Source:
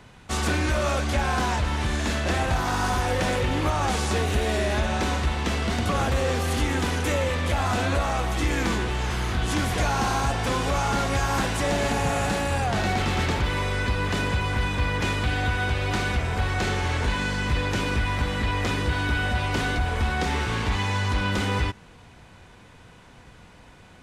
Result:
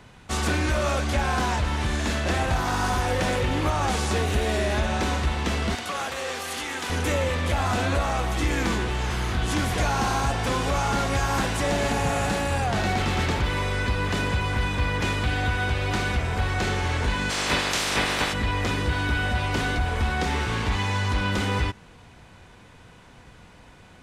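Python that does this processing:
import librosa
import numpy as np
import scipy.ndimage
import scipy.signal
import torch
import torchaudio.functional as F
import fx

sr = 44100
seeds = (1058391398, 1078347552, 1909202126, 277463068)

y = fx.highpass(x, sr, hz=990.0, slope=6, at=(5.75, 6.9))
y = fx.spec_clip(y, sr, under_db=25, at=(17.29, 18.32), fade=0.02)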